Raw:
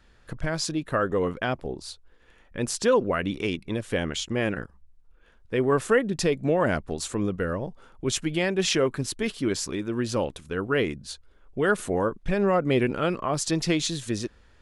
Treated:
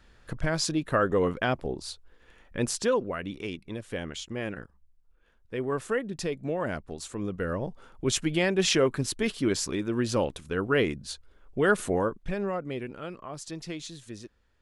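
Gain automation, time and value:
2.62 s +0.5 dB
3.1 s -7.5 dB
7.13 s -7.5 dB
7.66 s 0 dB
11.9 s 0 dB
12.81 s -13 dB

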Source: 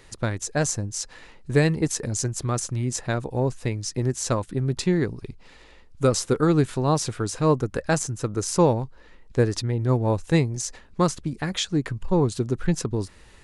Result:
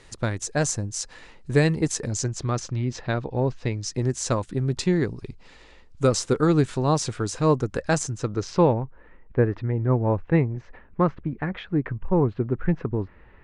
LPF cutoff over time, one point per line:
LPF 24 dB/oct
1.85 s 9700 Hz
2.92 s 4700 Hz
3.52 s 4700 Hz
3.97 s 8700 Hz
8.08 s 8700 Hz
8.57 s 4100 Hz
8.84 s 2200 Hz

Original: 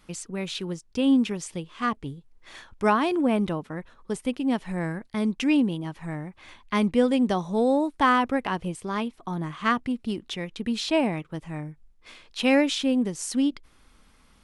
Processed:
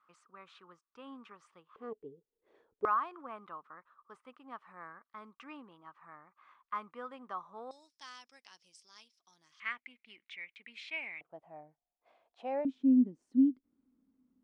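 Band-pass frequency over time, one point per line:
band-pass, Q 8.1
1200 Hz
from 1.76 s 440 Hz
from 2.85 s 1200 Hz
from 7.71 s 5300 Hz
from 9.6 s 2200 Hz
from 11.21 s 700 Hz
from 12.65 s 260 Hz

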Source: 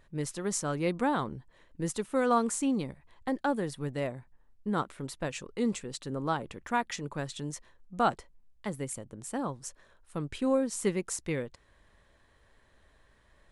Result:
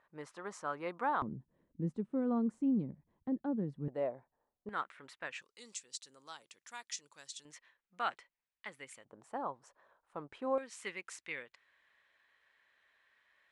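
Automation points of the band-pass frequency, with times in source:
band-pass, Q 1.5
1100 Hz
from 1.22 s 200 Hz
from 3.88 s 630 Hz
from 4.69 s 1800 Hz
from 5.42 s 6100 Hz
from 7.45 s 2200 Hz
from 9.05 s 880 Hz
from 10.58 s 2200 Hz

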